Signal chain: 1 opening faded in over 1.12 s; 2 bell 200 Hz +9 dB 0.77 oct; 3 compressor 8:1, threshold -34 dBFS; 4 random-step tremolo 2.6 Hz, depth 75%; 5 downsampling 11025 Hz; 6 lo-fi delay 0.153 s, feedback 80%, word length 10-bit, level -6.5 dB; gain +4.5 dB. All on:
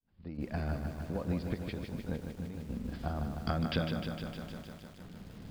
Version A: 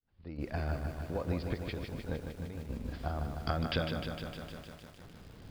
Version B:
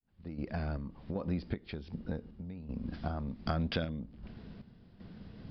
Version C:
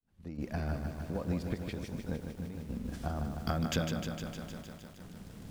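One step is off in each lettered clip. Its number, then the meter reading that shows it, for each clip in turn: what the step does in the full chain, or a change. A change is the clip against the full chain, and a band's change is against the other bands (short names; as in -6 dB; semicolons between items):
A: 2, 250 Hz band -4.5 dB; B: 6, crest factor change +2.0 dB; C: 5, 8 kHz band +11.0 dB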